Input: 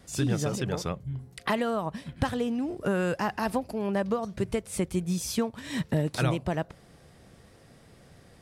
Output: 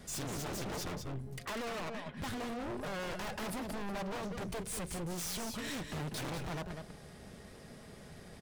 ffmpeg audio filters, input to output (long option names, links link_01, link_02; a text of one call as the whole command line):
ffmpeg -i in.wav -filter_complex "[0:a]asettb=1/sr,asplit=3[link_01][link_02][link_03];[link_01]atrim=end=1.454[link_04];[link_02]atrim=start=1.45:end=2.17,asetpts=PTS-STARTPTS,afade=type=in:duration=0.004:curve=qsin,afade=type=out:start_time=0.716:duration=0.004:curve=qsin,bass=frequency=250:gain=-15,treble=frequency=4000:gain=-15[link_05];[link_03]atrim=start=2.166[link_06];[link_04][link_05]acrossfade=duration=0.004:curve1=hsin:curve2=qsin[link_07];[link_07][link_06]acrossfade=duration=0.004:curve1=qsin:curve2=hsin,aeval=exprs='(tanh(70.8*val(0)+0.4)-tanh(0.4))/70.8':channel_layout=same,aecho=1:1:4.8:0.35,aecho=1:1:195:0.335,aeval=exprs='0.0133*(abs(mod(val(0)/0.0133+3,4)-2)-1)':channel_layout=same,volume=3.5dB" out.wav